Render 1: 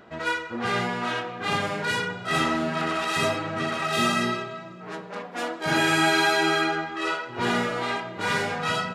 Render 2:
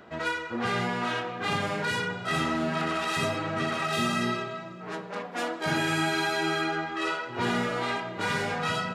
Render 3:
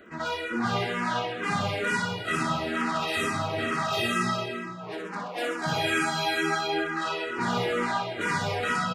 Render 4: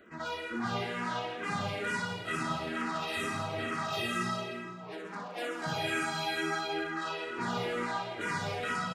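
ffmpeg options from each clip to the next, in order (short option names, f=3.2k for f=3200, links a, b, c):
-filter_complex "[0:a]acrossover=split=230[a][b];[b]acompressor=threshold=-26dB:ratio=4[c];[a][c]amix=inputs=2:normalize=0"
-filter_complex "[0:a]aecho=1:1:60|129|208.4|299.6|404.5:0.631|0.398|0.251|0.158|0.1,asplit=2[a][b];[b]afreqshift=-2.2[c];[a][c]amix=inputs=2:normalize=1,volume=2dB"
-af "aecho=1:1:166:0.224,volume=-6.5dB"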